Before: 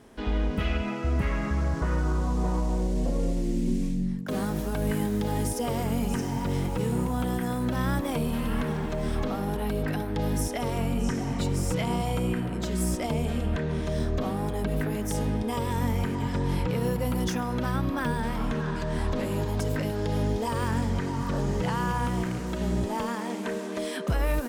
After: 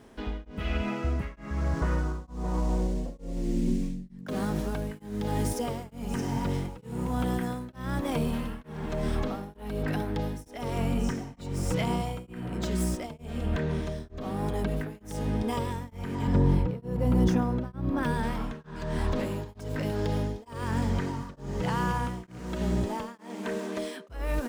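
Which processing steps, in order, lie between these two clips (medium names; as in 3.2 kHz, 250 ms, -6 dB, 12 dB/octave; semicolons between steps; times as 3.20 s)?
median filter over 3 samples; 16.27–18.03 s: tilt shelf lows +6.5 dB; tremolo of two beating tones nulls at 1.1 Hz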